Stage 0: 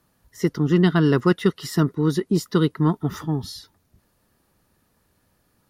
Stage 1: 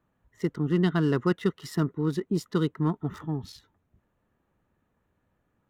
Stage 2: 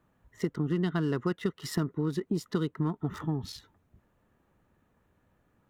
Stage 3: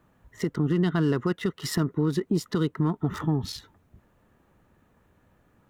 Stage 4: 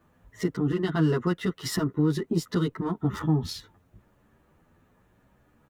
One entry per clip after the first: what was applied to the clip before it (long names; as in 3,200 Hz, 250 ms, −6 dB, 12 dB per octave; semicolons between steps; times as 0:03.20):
adaptive Wiener filter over 9 samples; level −6.5 dB
downward compressor 4 to 1, threshold −31 dBFS, peak gain reduction 11 dB; level +4 dB
brickwall limiter −21.5 dBFS, peak gain reduction 5.5 dB; level +6.5 dB
barber-pole flanger 9.7 ms +0.86 Hz; level +3 dB